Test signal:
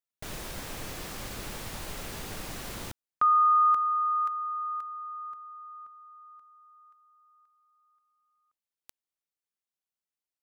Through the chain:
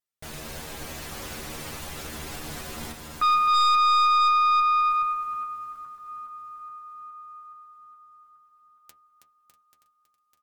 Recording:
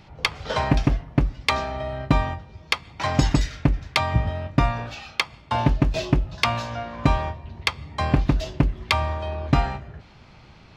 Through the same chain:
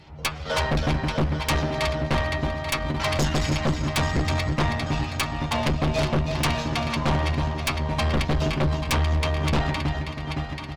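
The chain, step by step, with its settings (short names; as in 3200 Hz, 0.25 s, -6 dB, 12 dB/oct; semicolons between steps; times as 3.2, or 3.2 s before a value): regenerating reverse delay 0.418 s, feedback 67%, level -8.5 dB; metallic resonator 75 Hz, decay 0.22 s, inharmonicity 0.002; feedback echo 0.322 s, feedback 34%, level -7.5 dB; added harmonics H 6 -19 dB, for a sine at -10.5 dBFS; sine folder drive 11 dB, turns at -10.5 dBFS; gain -7 dB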